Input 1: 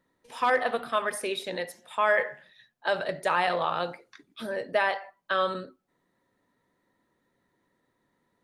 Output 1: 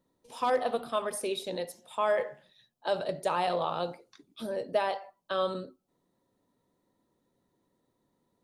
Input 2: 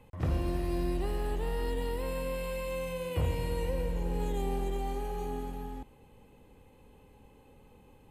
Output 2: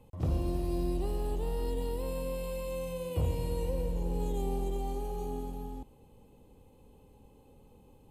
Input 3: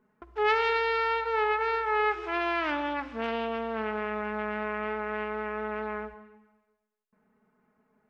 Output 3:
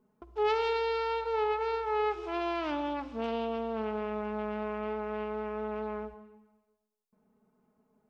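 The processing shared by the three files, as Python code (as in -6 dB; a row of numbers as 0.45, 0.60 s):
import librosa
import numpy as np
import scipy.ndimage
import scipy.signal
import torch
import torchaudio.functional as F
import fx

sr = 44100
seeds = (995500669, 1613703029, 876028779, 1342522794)

y = fx.peak_eq(x, sr, hz=1800.0, db=-13.0, octaves=1.1)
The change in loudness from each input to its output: -3.5, -0.5, -3.5 LU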